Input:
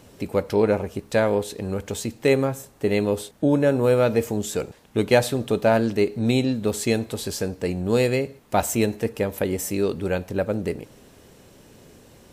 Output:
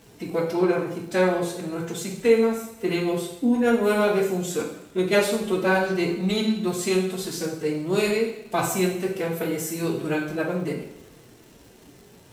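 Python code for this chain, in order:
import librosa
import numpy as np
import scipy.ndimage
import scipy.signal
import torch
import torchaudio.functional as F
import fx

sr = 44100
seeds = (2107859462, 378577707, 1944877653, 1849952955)

y = fx.pitch_keep_formants(x, sr, semitones=9.0)
y = fx.rev_double_slope(y, sr, seeds[0], early_s=0.66, late_s=1.8, knee_db=-18, drr_db=-0.5)
y = fx.dmg_crackle(y, sr, seeds[1], per_s=260.0, level_db=-40.0)
y = F.gain(torch.from_numpy(y), -3.5).numpy()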